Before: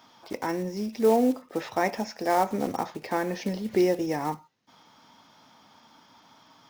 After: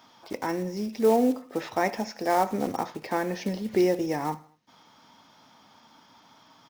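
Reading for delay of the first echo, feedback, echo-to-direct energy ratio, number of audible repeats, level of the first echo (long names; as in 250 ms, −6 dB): 78 ms, 49%, −20.5 dB, 3, −21.5 dB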